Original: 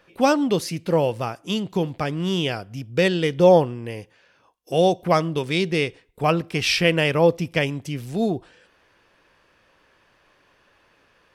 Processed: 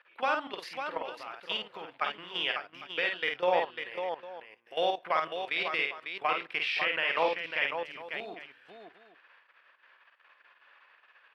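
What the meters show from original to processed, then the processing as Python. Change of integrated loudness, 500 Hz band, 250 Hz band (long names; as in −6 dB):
−10.0 dB, −13.5 dB, −24.0 dB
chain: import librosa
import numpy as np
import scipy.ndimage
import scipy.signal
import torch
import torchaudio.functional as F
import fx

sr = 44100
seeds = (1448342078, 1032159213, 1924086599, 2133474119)

y = scipy.signal.sosfilt(scipy.signal.butter(2, 1400.0, 'highpass', fs=sr, output='sos'), x)
y = fx.level_steps(y, sr, step_db=16)
y = fx.air_absorb(y, sr, metres=470.0)
y = fx.echo_multitap(y, sr, ms=(50, 548, 804), db=(-4.5, -7.0, -17.0))
y = y * 10.0 ** (8.0 / 20.0)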